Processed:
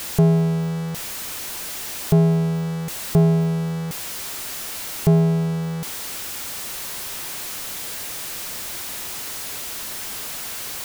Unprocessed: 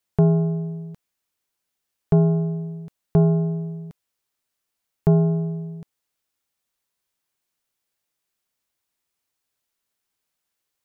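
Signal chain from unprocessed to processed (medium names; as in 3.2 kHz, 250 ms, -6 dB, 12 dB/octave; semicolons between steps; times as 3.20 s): jump at every zero crossing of -24.5 dBFS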